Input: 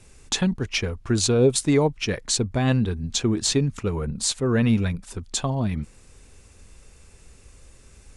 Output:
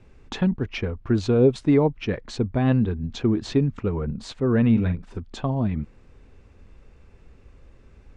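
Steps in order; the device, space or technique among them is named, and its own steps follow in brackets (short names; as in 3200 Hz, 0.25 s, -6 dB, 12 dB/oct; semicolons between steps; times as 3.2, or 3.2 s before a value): 4.71–5.2 doubler 44 ms -10 dB; phone in a pocket (LPF 3500 Hz 12 dB/oct; bell 270 Hz +2.5 dB 0.88 oct; high shelf 2300 Hz -9 dB)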